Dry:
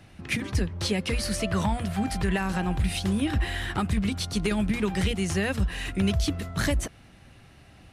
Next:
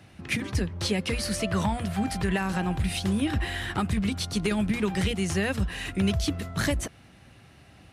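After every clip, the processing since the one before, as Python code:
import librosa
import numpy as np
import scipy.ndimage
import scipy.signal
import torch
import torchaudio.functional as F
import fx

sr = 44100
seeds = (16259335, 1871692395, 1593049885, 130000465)

y = scipy.signal.sosfilt(scipy.signal.butter(2, 62.0, 'highpass', fs=sr, output='sos'), x)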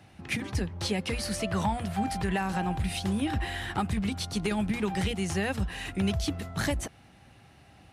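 y = fx.peak_eq(x, sr, hz=810.0, db=6.5, octaves=0.31)
y = y * librosa.db_to_amplitude(-3.0)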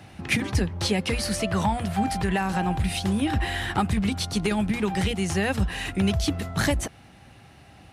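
y = fx.rider(x, sr, range_db=10, speed_s=0.5)
y = y * librosa.db_to_amplitude(5.0)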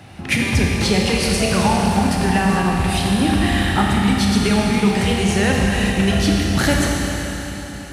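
y = fx.rev_schroeder(x, sr, rt60_s=3.9, comb_ms=27, drr_db=-2.0)
y = y * librosa.db_to_amplitude(4.5)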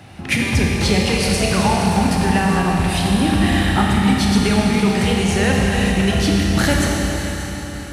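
y = fx.echo_alternate(x, sr, ms=290, hz=860.0, feedback_pct=51, wet_db=-8)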